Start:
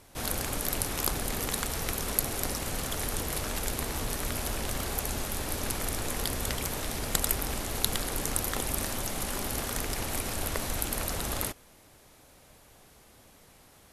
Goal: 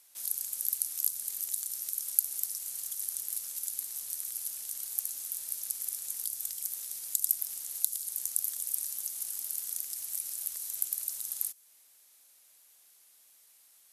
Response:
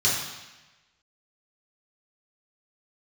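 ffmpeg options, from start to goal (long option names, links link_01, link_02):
-filter_complex "[0:a]aderivative,acrossover=split=170|4900[link_01][link_02][link_03];[link_02]acompressor=threshold=-58dB:ratio=6[link_04];[link_01][link_04][link_03]amix=inputs=3:normalize=0,volume=-1dB"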